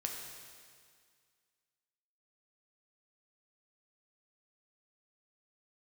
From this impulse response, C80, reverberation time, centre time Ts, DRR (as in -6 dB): 4.0 dB, 2.0 s, 70 ms, 0.5 dB